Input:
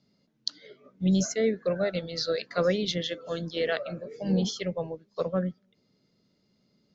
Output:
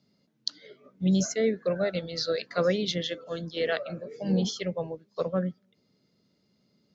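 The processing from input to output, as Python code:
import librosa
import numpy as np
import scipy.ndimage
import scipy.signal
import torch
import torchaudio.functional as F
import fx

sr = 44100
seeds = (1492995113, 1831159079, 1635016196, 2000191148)

y = scipy.signal.sosfilt(scipy.signal.butter(2, 56.0, 'highpass', fs=sr, output='sos'), x)
y = fx.band_widen(y, sr, depth_pct=40, at=(3.24, 3.9))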